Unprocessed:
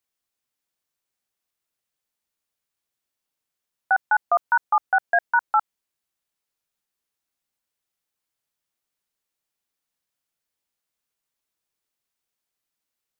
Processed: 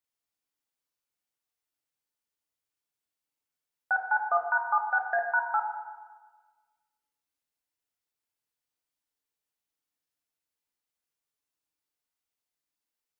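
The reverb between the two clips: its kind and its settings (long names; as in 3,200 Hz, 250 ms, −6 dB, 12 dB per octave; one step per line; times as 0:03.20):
feedback delay network reverb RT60 1.4 s, low-frequency decay 0.75×, high-frequency decay 0.8×, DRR 1 dB
level −8 dB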